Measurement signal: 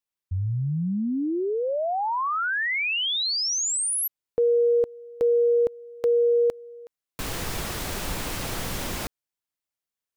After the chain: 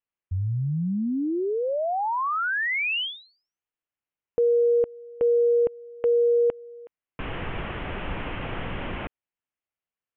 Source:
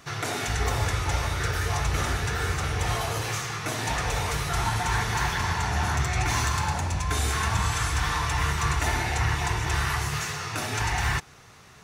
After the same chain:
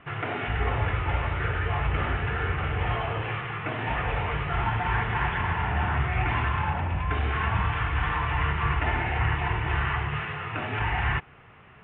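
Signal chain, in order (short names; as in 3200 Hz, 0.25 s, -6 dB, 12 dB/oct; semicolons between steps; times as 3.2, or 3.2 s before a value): steep low-pass 3100 Hz 72 dB/oct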